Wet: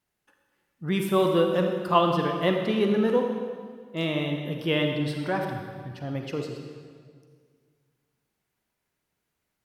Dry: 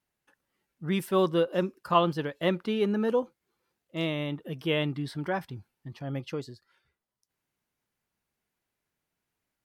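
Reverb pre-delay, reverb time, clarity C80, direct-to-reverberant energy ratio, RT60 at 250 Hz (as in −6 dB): 38 ms, 1.9 s, 5.0 dB, 3.0 dB, 2.1 s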